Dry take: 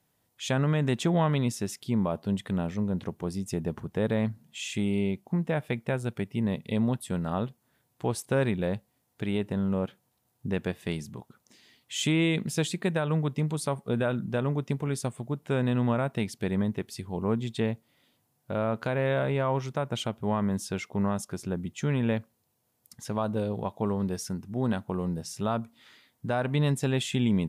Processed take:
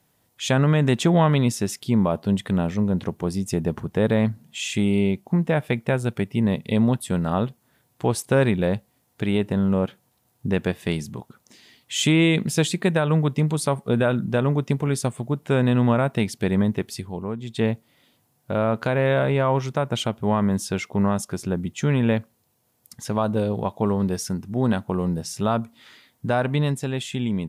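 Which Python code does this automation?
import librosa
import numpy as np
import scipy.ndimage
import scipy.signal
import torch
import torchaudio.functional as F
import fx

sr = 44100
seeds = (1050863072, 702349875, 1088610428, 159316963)

y = fx.gain(x, sr, db=fx.line((16.94, 7.0), (17.37, -4.0), (17.64, 6.5), (26.38, 6.5), (26.86, 0.0)))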